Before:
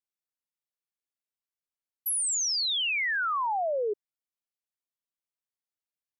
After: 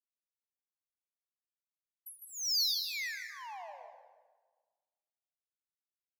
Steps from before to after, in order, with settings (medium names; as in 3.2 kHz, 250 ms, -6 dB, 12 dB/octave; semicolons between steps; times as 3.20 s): treble shelf 2.4 kHz -11.5 dB; compressor with a negative ratio -37 dBFS, ratio -1; static phaser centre 2 kHz, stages 8; power-law waveshaper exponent 2; on a send: feedback echo behind a high-pass 155 ms, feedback 37%, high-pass 4.6 kHz, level -4 dB; on the sum: plate-style reverb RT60 1.4 s, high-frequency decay 0.45×, pre-delay 115 ms, DRR 5 dB; trim +5 dB